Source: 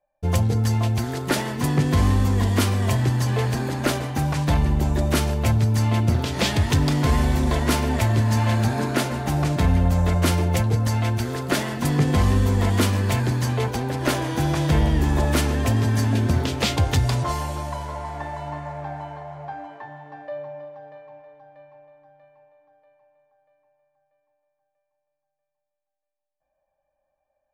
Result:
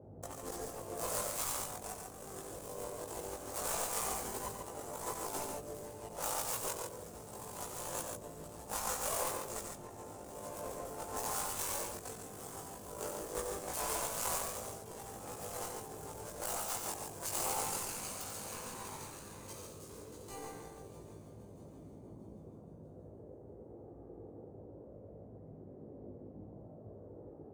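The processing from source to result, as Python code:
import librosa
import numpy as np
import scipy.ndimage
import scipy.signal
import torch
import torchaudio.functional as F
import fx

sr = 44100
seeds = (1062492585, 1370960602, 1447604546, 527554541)

p1 = scipy.signal.medfilt(x, 41)
p2 = F.preemphasis(torch.from_numpy(p1), 0.8).numpy()
p3 = fx.notch(p2, sr, hz=920.0, q=12.0)
p4 = fx.spec_gate(p3, sr, threshold_db=-20, keep='weak')
p5 = fx.graphic_eq(p4, sr, hz=(125, 500, 1000, 2000, 4000, 8000), db=(-9, 6, 7, -10, -7, 8))
p6 = fx.over_compress(p5, sr, threshold_db=-50.0, ratio=-0.5)
p7 = fx.power_curve(p6, sr, exponent=1.4)
p8 = fx.dmg_noise_band(p7, sr, seeds[0], low_hz=62.0, high_hz=560.0, level_db=-69.0)
p9 = fx.chorus_voices(p8, sr, voices=4, hz=0.13, base_ms=19, depth_ms=1.3, mix_pct=50)
p10 = p9 + fx.echo_multitap(p9, sr, ms=(90, 141), db=(-7.0, -5.0), dry=0)
y = p10 * librosa.db_to_amplitude(17.5)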